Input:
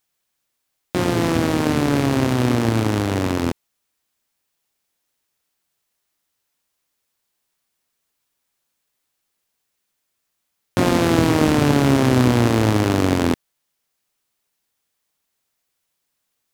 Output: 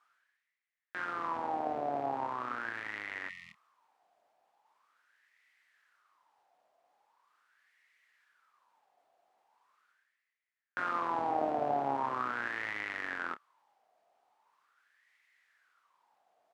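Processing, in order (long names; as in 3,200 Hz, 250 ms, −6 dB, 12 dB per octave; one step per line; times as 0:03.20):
LFO wah 0.41 Hz 690–2,000 Hz, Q 8
reversed playback
upward compression, threshold −53 dBFS
reversed playback
double-tracking delay 29 ms −12.5 dB
healed spectral selection 0:03.31–0:03.63, 220–1,800 Hz after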